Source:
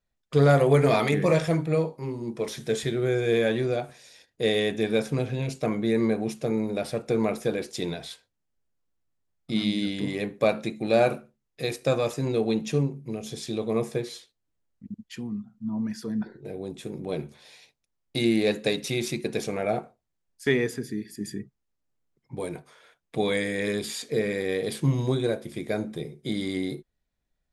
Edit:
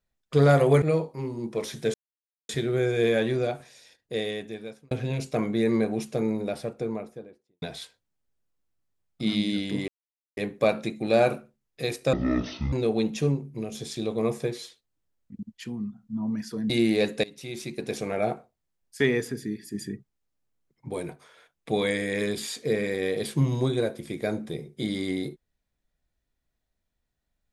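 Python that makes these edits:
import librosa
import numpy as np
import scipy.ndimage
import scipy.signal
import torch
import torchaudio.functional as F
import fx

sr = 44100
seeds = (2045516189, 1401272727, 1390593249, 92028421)

y = fx.studio_fade_out(x, sr, start_s=6.43, length_s=1.48)
y = fx.edit(y, sr, fx.cut(start_s=0.82, length_s=0.84),
    fx.insert_silence(at_s=2.78, length_s=0.55),
    fx.fade_out_span(start_s=3.84, length_s=1.36),
    fx.insert_silence(at_s=10.17, length_s=0.49),
    fx.speed_span(start_s=11.93, length_s=0.31, speed=0.52),
    fx.cut(start_s=16.21, length_s=1.95),
    fx.fade_in_from(start_s=18.7, length_s=0.9, floor_db=-20.5), tone=tone)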